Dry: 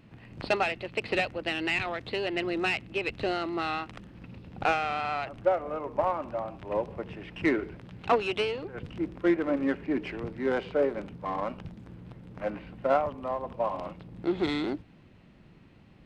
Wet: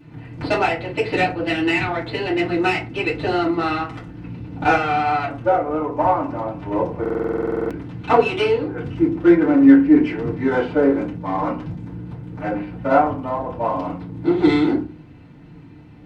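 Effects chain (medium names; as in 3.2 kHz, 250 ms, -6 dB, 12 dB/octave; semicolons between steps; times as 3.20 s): flange 0.97 Hz, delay 6.3 ms, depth 4.4 ms, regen -74%; FDN reverb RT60 0.34 s, low-frequency decay 1.5×, high-frequency decay 0.5×, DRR -9 dB; buffer glitch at 7.01 s, samples 2048, times 14; trim +3.5 dB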